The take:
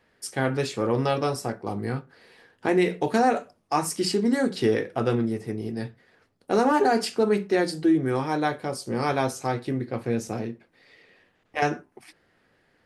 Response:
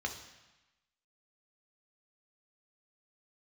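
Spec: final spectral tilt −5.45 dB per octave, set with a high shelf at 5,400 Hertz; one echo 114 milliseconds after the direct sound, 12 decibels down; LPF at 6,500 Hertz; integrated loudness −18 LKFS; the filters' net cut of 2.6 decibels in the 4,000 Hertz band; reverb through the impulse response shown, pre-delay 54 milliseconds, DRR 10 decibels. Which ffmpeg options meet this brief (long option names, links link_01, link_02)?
-filter_complex "[0:a]lowpass=6500,equalizer=frequency=4000:width_type=o:gain=-6,highshelf=frequency=5400:gain=7,aecho=1:1:114:0.251,asplit=2[link_01][link_02];[1:a]atrim=start_sample=2205,adelay=54[link_03];[link_02][link_03]afir=irnorm=-1:irlink=0,volume=-13dB[link_04];[link_01][link_04]amix=inputs=2:normalize=0,volume=7dB"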